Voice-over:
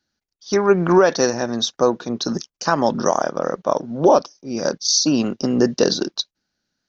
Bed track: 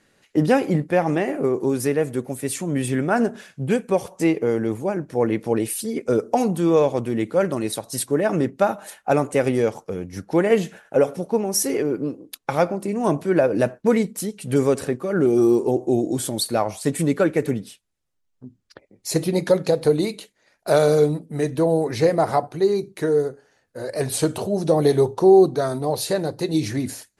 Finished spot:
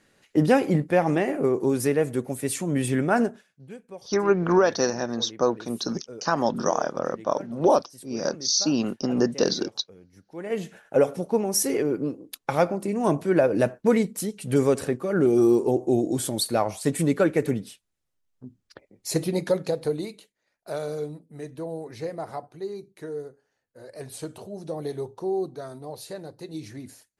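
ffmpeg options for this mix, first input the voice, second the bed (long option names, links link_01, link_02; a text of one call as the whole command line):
ffmpeg -i stem1.wav -i stem2.wav -filter_complex "[0:a]adelay=3600,volume=-5.5dB[link_01];[1:a]volume=17.5dB,afade=type=out:start_time=3.19:duration=0.24:silence=0.105925,afade=type=in:start_time=10.36:duration=0.61:silence=0.112202,afade=type=out:start_time=18.85:duration=1.5:silence=0.237137[link_02];[link_01][link_02]amix=inputs=2:normalize=0" out.wav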